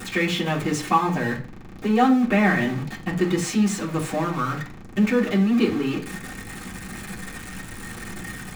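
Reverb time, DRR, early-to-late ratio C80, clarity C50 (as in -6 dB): 0.40 s, -7.5 dB, 17.5 dB, 11.5 dB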